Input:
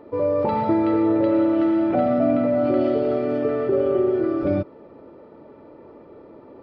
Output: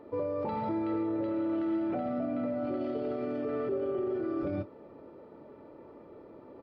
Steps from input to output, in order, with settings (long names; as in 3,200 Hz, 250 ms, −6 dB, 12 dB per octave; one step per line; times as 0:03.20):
brickwall limiter −19.5 dBFS, peak gain reduction 10.5 dB
double-tracking delay 28 ms −12.5 dB
level −6 dB